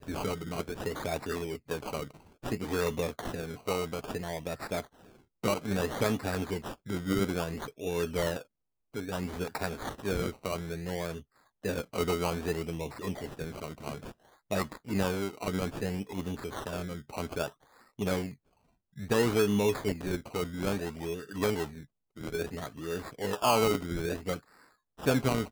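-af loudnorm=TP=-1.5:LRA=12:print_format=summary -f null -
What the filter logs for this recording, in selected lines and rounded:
Input Integrated:    -32.9 LUFS
Input True Peak:     -12.8 dBTP
Input LRA:             4.5 LU
Input Threshold:     -43.3 LUFS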